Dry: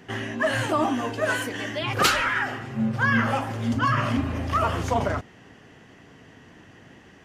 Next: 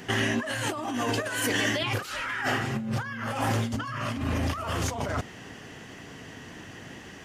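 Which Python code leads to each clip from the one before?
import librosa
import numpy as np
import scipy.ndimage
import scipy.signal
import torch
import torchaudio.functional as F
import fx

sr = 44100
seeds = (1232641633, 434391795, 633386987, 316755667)

y = fx.high_shelf(x, sr, hz=3600.0, db=8.5)
y = fx.over_compress(y, sr, threshold_db=-30.0, ratio=-1.0)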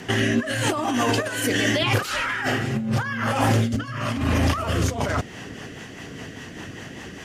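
y = fx.rotary_switch(x, sr, hz=0.85, then_hz=5.0, switch_at_s=4.65)
y = y * librosa.db_to_amplitude(8.5)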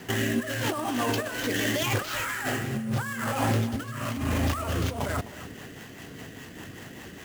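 y = fx.sample_hold(x, sr, seeds[0], rate_hz=9500.0, jitter_pct=20)
y = y + 10.0 ** (-15.5 / 20.0) * np.pad(y, (int(258 * sr / 1000.0), 0))[:len(y)]
y = y * librosa.db_to_amplitude(-5.5)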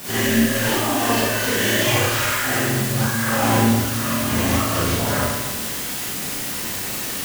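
y = fx.quant_dither(x, sr, seeds[1], bits=6, dither='triangular')
y = fx.rev_schroeder(y, sr, rt60_s=1.0, comb_ms=31, drr_db=-9.0)
y = y * librosa.db_to_amplitude(-1.0)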